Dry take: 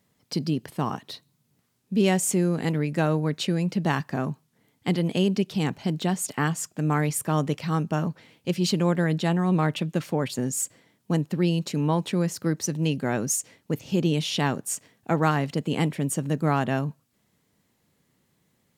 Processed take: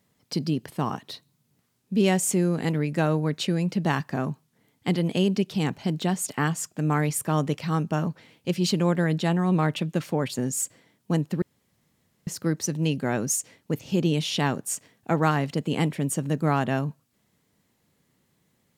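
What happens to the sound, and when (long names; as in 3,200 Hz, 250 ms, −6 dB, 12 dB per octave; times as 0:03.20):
0:11.42–0:12.27: fill with room tone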